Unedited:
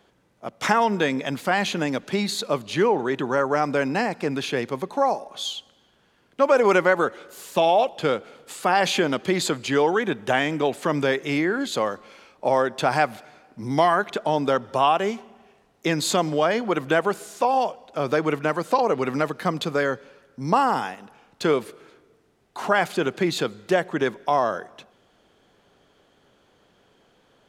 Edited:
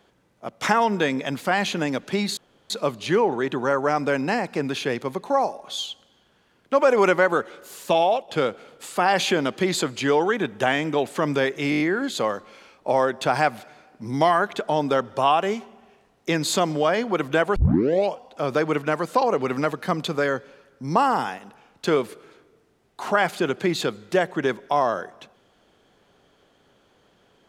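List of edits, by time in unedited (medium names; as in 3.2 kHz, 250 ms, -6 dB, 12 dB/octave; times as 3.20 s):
2.37 s: insert room tone 0.33 s
7.56–7.95 s: fade out equal-power, to -7 dB
11.37 s: stutter 0.02 s, 6 plays
17.13 s: tape start 0.58 s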